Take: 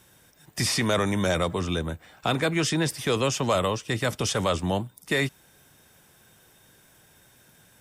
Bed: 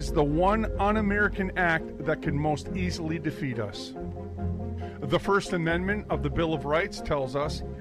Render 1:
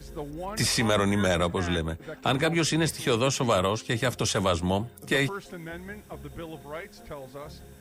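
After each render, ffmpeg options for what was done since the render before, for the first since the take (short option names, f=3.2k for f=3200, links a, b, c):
-filter_complex "[1:a]volume=-12.5dB[a];[0:a][a]amix=inputs=2:normalize=0"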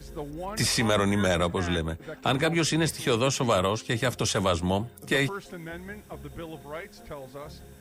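-af anull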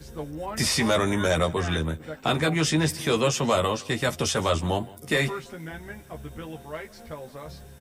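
-filter_complex "[0:a]asplit=2[a][b];[b]adelay=13,volume=-5dB[c];[a][c]amix=inputs=2:normalize=0,aecho=1:1:165:0.0841"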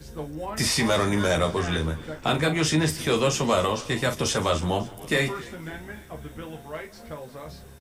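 -filter_complex "[0:a]asplit=2[a][b];[b]adelay=39,volume=-10dB[c];[a][c]amix=inputs=2:normalize=0,asplit=6[d][e][f][g][h][i];[e]adelay=273,afreqshift=-67,volume=-20.5dB[j];[f]adelay=546,afreqshift=-134,volume=-24.5dB[k];[g]adelay=819,afreqshift=-201,volume=-28.5dB[l];[h]adelay=1092,afreqshift=-268,volume=-32.5dB[m];[i]adelay=1365,afreqshift=-335,volume=-36.6dB[n];[d][j][k][l][m][n]amix=inputs=6:normalize=0"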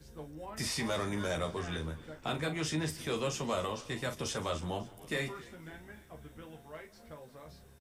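-af "volume=-11.5dB"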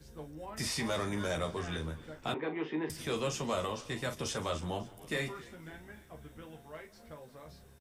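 -filter_complex "[0:a]asettb=1/sr,asplit=3[a][b][c];[a]atrim=end=2.344[d];[b]atrim=start=2.34:end=2.9,asetpts=PTS-STARTPTS,afade=t=in:d=0.004:c=qsin,afade=t=out:st=0.556:d=0.004:c=qsin,highpass=f=220:w=0.5412,highpass=f=220:w=1.3066,equalizer=f=400:t=q:w=4:g=8,equalizer=f=610:t=q:w=4:g=-7,equalizer=f=900:t=q:w=4:g=5,equalizer=f=1.4k:t=q:w=4:g=-8,equalizer=f=2.4k:t=q:w=4:g=-3,lowpass=f=2.5k:w=0.5412,lowpass=f=2.5k:w=1.3066[e];[c]atrim=start=2.896[f];[d][e]acrossfade=d=0.004:c1=hsin:c2=qsin[g];[g][f]acrossfade=d=0.004:c1=qsin:c2=hsin"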